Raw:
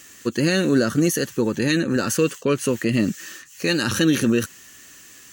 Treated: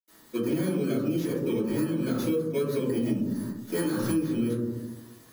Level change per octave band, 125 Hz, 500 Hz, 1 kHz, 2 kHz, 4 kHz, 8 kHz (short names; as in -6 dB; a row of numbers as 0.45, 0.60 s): -6.5, -6.0, -9.5, -16.0, -16.0, -15.0 dB